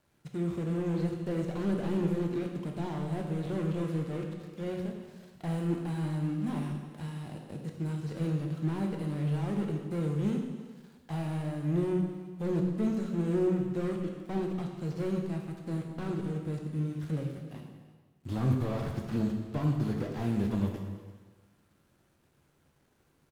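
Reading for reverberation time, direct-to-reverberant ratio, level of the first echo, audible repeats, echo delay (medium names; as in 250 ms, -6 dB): 1.4 s, 1.5 dB, -19.0 dB, 1, 339 ms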